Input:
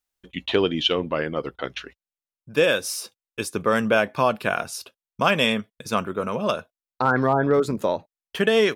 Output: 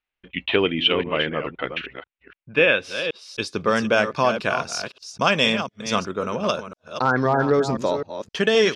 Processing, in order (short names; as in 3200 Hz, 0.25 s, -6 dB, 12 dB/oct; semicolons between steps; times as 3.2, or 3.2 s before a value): reverse delay 0.259 s, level -9 dB; low-pass sweep 2500 Hz -> 5800 Hz, 2.7–3.82